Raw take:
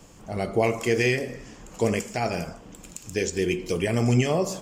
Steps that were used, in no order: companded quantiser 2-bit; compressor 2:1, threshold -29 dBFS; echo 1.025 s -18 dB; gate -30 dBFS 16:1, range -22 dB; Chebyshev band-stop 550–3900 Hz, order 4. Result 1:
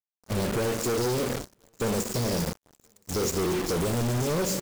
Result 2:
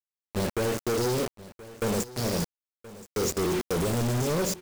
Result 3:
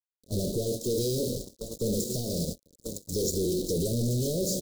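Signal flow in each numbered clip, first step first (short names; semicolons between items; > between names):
Chebyshev band-stop > compressor > companded quantiser > echo > gate; Chebyshev band-stop > gate > compressor > companded quantiser > echo; echo > compressor > companded quantiser > Chebyshev band-stop > gate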